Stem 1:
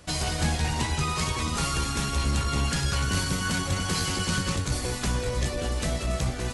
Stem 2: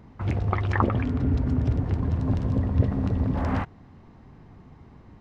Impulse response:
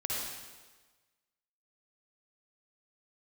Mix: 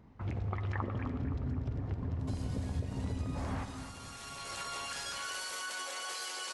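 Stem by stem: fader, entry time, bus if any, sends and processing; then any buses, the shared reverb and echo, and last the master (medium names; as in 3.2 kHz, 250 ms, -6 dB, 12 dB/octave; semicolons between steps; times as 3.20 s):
3.91 s -17 dB -> 4.61 s -5 dB, 2.20 s, send -12.5 dB, no echo send, high-pass 490 Hz 24 dB/octave; peak limiter -28 dBFS, peak gain reduction 11 dB
-10.5 dB, 0.00 s, send -14.5 dB, echo send -10.5 dB, none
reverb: on, RT60 1.3 s, pre-delay 49 ms
echo: feedback delay 259 ms, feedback 52%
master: compression 4:1, threshold -32 dBFS, peak gain reduction 8.5 dB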